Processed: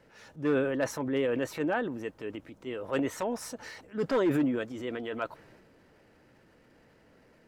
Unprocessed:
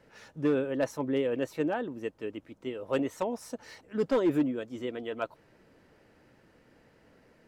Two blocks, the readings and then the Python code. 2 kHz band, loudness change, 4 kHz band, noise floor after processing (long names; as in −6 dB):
+4.0 dB, 0.0 dB, +1.5 dB, −62 dBFS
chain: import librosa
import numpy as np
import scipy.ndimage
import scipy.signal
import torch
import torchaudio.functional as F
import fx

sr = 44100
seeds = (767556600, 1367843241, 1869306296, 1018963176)

y = fx.transient(x, sr, attack_db=-4, sustain_db=6)
y = fx.dynamic_eq(y, sr, hz=1600.0, q=1.2, threshold_db=-51.0, ratio=4.0, max_db=5)